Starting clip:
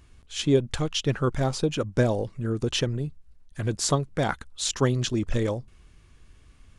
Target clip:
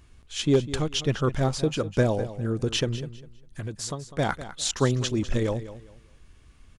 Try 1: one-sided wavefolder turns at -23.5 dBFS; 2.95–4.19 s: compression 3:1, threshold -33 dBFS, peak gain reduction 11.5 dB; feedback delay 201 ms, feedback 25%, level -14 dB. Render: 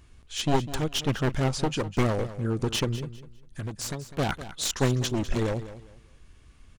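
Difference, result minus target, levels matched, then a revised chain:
one-sided wavefolder: distortion +26 dB
one-sided wavefolder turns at -12.5 dBFS; 2.95–4.19 s: compression 3:1, threshold -33 dBFS, peak gain reduction 12 dB; feedback delay 201 ms, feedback 25%, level -14 dB

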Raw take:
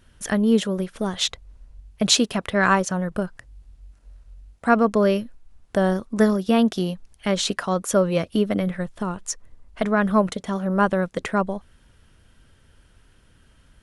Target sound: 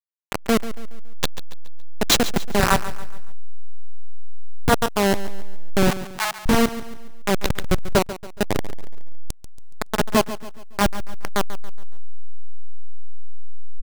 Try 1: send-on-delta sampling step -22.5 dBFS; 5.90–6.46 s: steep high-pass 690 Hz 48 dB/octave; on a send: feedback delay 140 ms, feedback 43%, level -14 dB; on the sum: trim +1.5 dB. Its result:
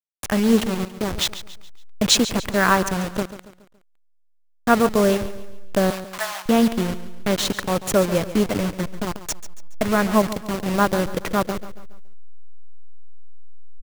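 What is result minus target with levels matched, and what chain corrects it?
send-on-delta sampling: distortion -19 dB
send-on-delta sampling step -10.5 dBFS; 5.90–6.46 s: steep high-pass 690 Hz 48 dB/octave; on a send: feedback delay 140 ms, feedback 43%, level -14 dB; on the sum: trim +1.5 dB

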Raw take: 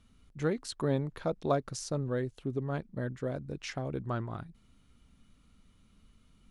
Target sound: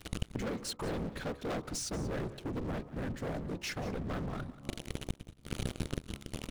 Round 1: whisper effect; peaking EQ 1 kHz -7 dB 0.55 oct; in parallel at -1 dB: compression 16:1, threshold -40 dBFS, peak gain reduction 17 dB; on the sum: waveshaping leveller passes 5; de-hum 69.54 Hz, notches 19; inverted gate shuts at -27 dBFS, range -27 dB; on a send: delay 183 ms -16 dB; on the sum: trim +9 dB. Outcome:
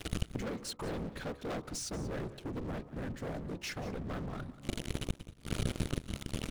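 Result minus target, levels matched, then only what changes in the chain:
compression: peak gain reduction +9 dB
change: compression 16:1, threshold -30.5 dBFS, peak gain reduction 8 dB

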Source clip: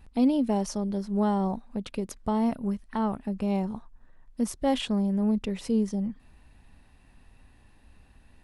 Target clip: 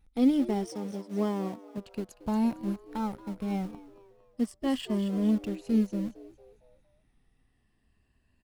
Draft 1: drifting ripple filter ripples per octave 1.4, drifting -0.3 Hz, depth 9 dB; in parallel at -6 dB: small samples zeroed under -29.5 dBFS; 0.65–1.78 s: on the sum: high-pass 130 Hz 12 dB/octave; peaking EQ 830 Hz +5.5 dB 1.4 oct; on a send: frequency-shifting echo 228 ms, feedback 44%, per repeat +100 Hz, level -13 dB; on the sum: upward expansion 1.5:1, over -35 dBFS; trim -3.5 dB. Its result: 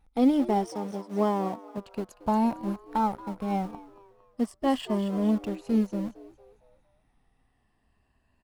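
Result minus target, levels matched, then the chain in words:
1 kHz band +8.0 dB
drifting ripple filter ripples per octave 1.4, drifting -0.3 Hz, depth 9 dB; in parallel at -6 dB: small samples zeroed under -29.5 dBFS; 0.65–1.78 s: on the sum: high-pass 130 Hz 12 dB/octave; peaking EQ 830 Hz -4 dB 1.4 oct; on a send: frequency-shifting echo 228 ms, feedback 44%, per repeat +100 Hz, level -13 dB; on the sum: upward expansion 1.5:1, over -35 dBFS; trim -3.5 dB

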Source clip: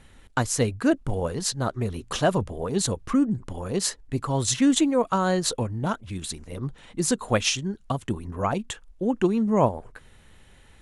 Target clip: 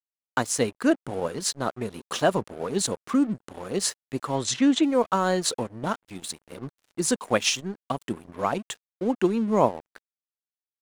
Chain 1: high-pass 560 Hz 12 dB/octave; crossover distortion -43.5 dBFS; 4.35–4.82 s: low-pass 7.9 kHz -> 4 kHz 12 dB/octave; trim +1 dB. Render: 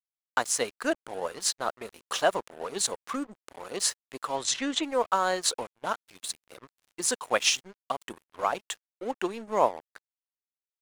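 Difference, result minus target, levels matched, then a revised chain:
250 Hz band -9.0 dB
high-pass 200 Hz 12 dB/octave; crossover distortion -43.5 dBFS; 4.35–4.82 s: low-pass 7.9 kHz -> 4 kHz 12 dB/octave; trim +1 dB

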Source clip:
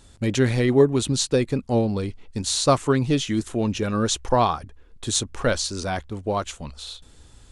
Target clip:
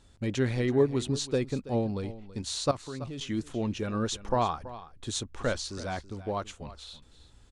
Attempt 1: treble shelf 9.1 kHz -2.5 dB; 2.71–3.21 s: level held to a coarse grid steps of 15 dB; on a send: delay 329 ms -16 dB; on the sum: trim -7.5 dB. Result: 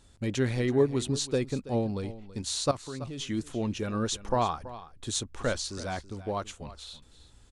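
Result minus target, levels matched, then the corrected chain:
8 kHz band +3.0 dB
treble shelf 9.1 kHz -11.5 dB; 2.71–3.21 s: level held to a coarse grid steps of 15 dB; on a send: delay 329 ms -16 dB; on the sum: trim -7.5 dB

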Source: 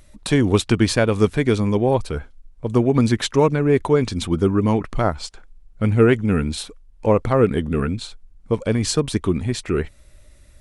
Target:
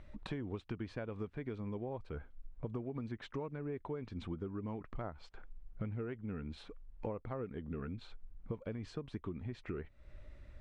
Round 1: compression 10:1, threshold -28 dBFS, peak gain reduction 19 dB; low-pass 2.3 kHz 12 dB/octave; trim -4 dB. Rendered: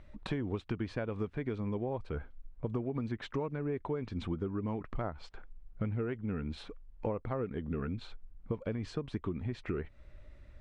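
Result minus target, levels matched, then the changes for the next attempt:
compression: peak gain reduction -6 dB
change: compression 10:1, threshold -34.5 dBFS, peak gain reduction 25 dB

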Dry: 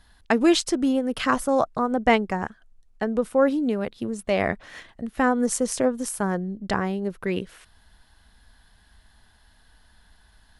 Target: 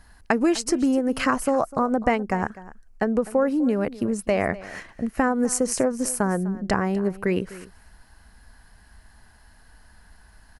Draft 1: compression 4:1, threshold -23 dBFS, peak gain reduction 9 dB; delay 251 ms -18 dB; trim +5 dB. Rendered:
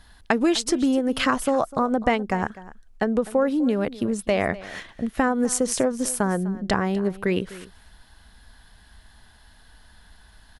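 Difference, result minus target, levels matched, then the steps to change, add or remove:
4 kHz band +5.0 dB
add after compression: peaking EQ 3.5 kHz -14.5 dB 0.36 oct

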